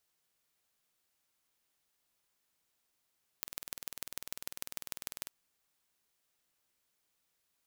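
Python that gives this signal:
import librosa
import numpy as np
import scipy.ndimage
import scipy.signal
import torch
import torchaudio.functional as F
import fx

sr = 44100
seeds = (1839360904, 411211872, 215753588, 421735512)

y = fx.impulse_train(sr, length_s=1.85, per_s=20.1, accent_every=3, level_db=-9.0)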